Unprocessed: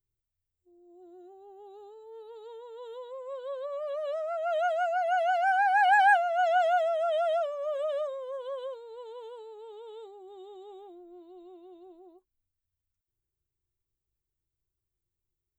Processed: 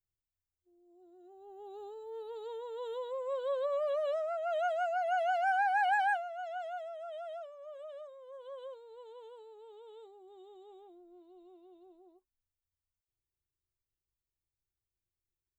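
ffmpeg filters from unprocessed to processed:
ffmpeg -i in.wav -af "volume=11dB,afade=type=in:start_time=1.19:duration=0.66:silence=0.281838,afade=type=out:start_time=3.72:duration=0.7:silence=0.421697,afade=type=out:start_time=5.59:duration=0.82:silence=0.281838,afade=type=in:start_time=8.14:duration=0.58:silence=0.398107" out.wav

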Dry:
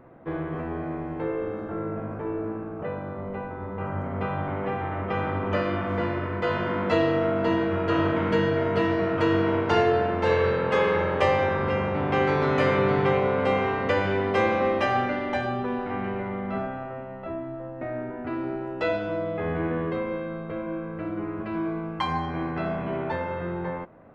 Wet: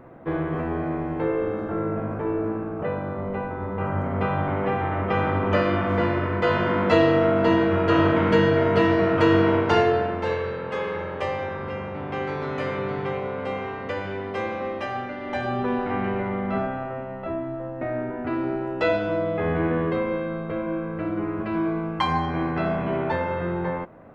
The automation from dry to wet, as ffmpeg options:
ffmpeg -i in.wav -af "volume=14.5dB,afade=type=out:start_time=9.43:duration=1.02:silence=0.298538,afade=type=in:start_time=15.17:duration=0.51:silence=0.316228" out.wav

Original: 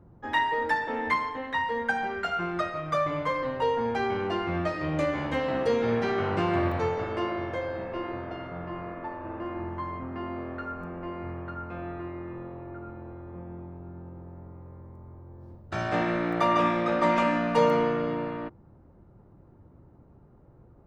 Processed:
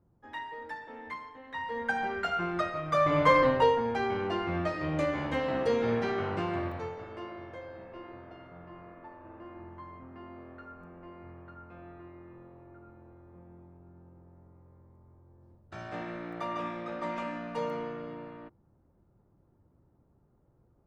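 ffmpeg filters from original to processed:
ffmpeg -i in.wav -af "volume=8dB,afade=type=in:start_time=1.43:duration=0.62:silence=0.223872,afade=type=in:start_time=2.92:duration=0.45:silence=0.334965,afade=type=out:start_time=3.37:duration=0.45:silence=0.298538,afade=type=out:start_time=5.89:duration=1.08:silence=0.334965" out.wav

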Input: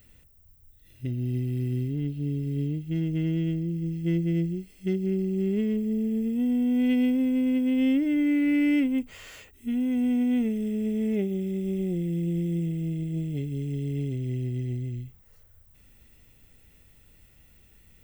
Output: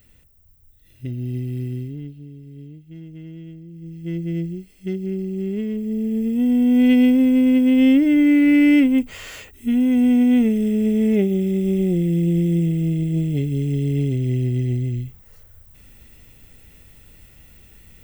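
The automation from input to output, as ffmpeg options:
ffmpeg -i in.wav -af "volume=21.5dB,afade=type=out:start_time=1.59:duration=0.69:silence=0.237137,afade=type=in:start_time=3.7:duration=0.64:silence=0.266073,afade=type=in:start_time=5.74:duration=1.07:silence=0.398107" out.wav

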